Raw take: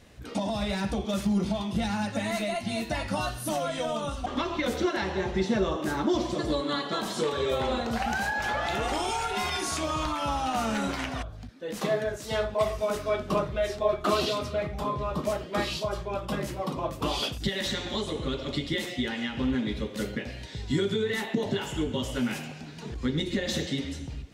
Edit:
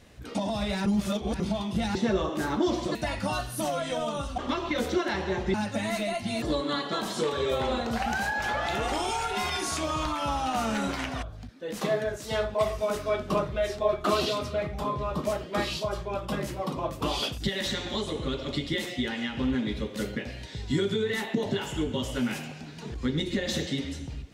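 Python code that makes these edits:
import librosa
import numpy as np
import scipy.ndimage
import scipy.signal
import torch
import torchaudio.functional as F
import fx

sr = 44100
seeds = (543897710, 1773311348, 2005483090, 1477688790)

y = fx.edit(x, sr, fx.reverse_span(start_s=0.86, length_s=0.54),
    fx.swap(start_s=1.95, length_s=0.88, other_s=5.42, other_length_s=1.0), tone=tone)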